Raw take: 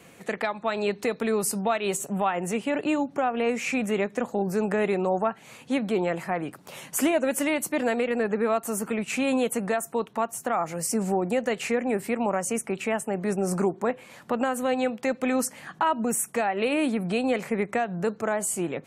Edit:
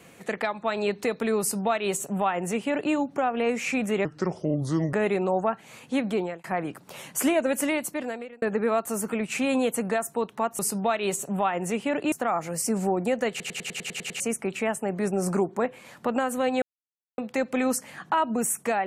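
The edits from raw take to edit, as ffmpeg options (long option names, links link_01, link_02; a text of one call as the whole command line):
ffmpeg -i in.wav -filter_complex "[0:a]asplit=17[link_01][link_02][link_03][link_04][link_05][link_06][link_07][link_08][link_09][link_10][link_11][link_12][link_13][link_14][link_15][link_16][link_17];[link_01]atrim=end=4.054[link_18];[link_02]atrim=start=4.05:end=4.71,asetpts=PTS-STARTPTS,asetrate=33075,aresample=44100[link_19];[link_03]atrim=start=4.706:end=6.22,asetpts=PTS-STARTPTS,afade=type=out:start_time=1.204:duration=0.31[link_20];[link_04]atrim=start=6.22:end=8.2,asetpts=PTS-STARTPTS,afade=type=in:duration=0.004:curve=hsin,afade=type=out:start_time=1.22:duration=0.76[link_21];[link_05]atrim=start=8.2:end=10.372,asetpts=PTS-STARTPTS,afade=type=in:duration=0.004:curve=hsin[link_22];[link_06]atrim=start=1.398:end=2.932[link_23];[link_07]atrim=start=10.368:end=11.652[link_24];[link_08]atrim=start=11.548:end=11.652[link_25];[link_09]atrim=start=11.548:end=11.652[link_26];[link_10]atrim=start=11.548:end=11.652[link_27];[link_11]atrim=start=11.548:end=11.652[link_28];[link_12]atrim=start=11.548:end=11.652[link_29];[link_13]atrim=start=11.548:end=11.652[link_30];[link_14]atrim=start=11.548:end=11.652[link_31];[link_15]atrim=start=11.548:end=11.652[link_32];[link_16]atrim=start=12.448:end=14.87,asetpts=PTS-STARTPTS,afade=type=out:start_time=2.418:duration=0.004:curve=hsin,apad=pad_dur=0.56[link_33];[link_17]atrim=start=14.87,asetpts=PTS-STARTPTS,afade=type=in:duration=0.004:curve=hsin[link_34];[link_18][link_19]acrossfade=duration=0.004:curve1=hsin:curve2=hsin[link_35];[link_20][link_21][link_22]concat=n=3:v=0:a=1[link_36];[link_35][link_36]acrossfade=duration=0.004:curve1=hsin:curve2=hsin[link_37];[link_37][link_23]acrossfade=duration=0.004:curve1=hsin:curve2=hsin[link_38];[link_38][link_24]acrossfade=duration=0.004:curve1=hsin:curve2=hsin[link_39];[link_39][link_25]acrossfade=duration=0.004:curve1=hsin:curve2=hsin[link_40];[link_40][link_26]acrossfade=duration=0.004:curve1=hsin:curve2=hsin[link_41];[link_41][link_27]acrossfade=duration=0.004:curve1=hsin:curve2=hsin[link_42];[link_42][link_28]acrossfade=duration=0.004:curve1=hsin:curve2=hsin[link_43];[link_43][link_29]acrossfade=duration=0.004:curve1=hsin:curve2=hsin[link_44];[link_44][link_30]acrossfade=duration=0.004:curve1=hsin:curve2=hsin[link_45];[link_45][link_31]acrossfade=duration=0.004:curve1=hsin:curve2=hsin[link_46];[link_46][link_32]acrossfade=duration=0.004:curve1=hsin:curve2=hsin[link_47];[link_33][link_34]concat=n=2:v=0:a=1[link_48];[link_47][link_48]acrossfade=duration=0.004:curve1=hsin:curve2=hsin" out.wav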